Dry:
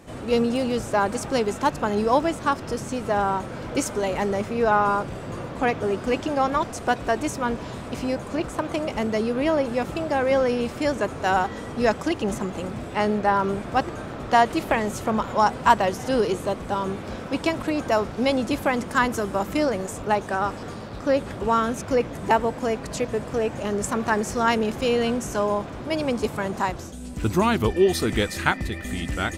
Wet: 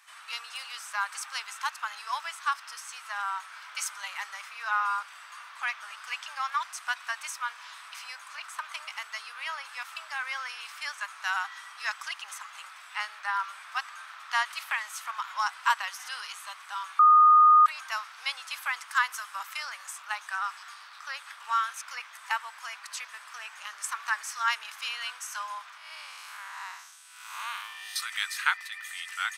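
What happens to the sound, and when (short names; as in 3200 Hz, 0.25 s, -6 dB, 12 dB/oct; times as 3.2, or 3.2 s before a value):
16.99–17.66 bleep 1230 Hz -10.5 dBFS
25.77–27.96 time blur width 0.189 s
whole clip: steep high-pass 1100 Hz 36 dB/oct; notch 7100 Hz, Q 11; gain -2 dB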